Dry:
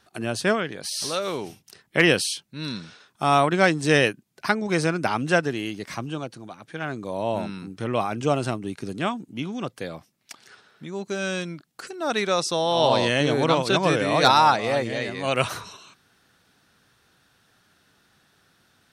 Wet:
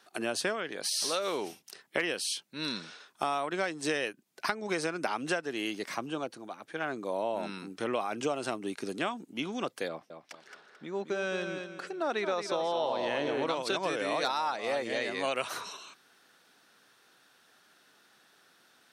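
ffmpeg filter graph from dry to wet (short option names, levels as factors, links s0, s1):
-filter_complex "[0:a]asettb=1/sr,asplit=3[s0][s1][s2];[s0]atrim=end=5.894[s3];[s1]atrim=start=5.89:end=7.43,asetpts=PTS-STARTPTS,afade=t=in:d=0.004:c=qsin,afade=t=out:st=1.536:d=0.004:c=qsin,lowpass=f=1800:p=1,aemphasis=mode=production:type=50fm[s4];[s2]atrim=start=7.426[s5];[s3][s4]acrossfade=d=0.004:c1=hsin:c2=qsin[s6];[s6][s5]acrossfade=d=0.004:c1=qsin:c2=hsin,asettb=1/sr,asplit=3[s7][s8][s9];[s7]atrim=end=9.884[s10];[s8]atrim=start=9.88:end=13.47,asetpts=PTS-STARTPTS,afade=t=in:d=0.004:c=qsin,afade=t=out:st=3.586:d=0.004:c=qsin,lowpass=f=1900:p=1,aecho=1:1:220|440|660|880:0.398|0.127|0.0408|0.013,atrim=end_sample=158319[s11];[s9]atrim=start=13.466[s12];[s10][s11]acrossfade=d=0.004:c1=hsin:c2=qsin[s13];[s13][s12]acrossfade=d=0.004:c1=qsin:c2=hsin,highpass=310,acompressor=threshold=0.0447:ratio=12"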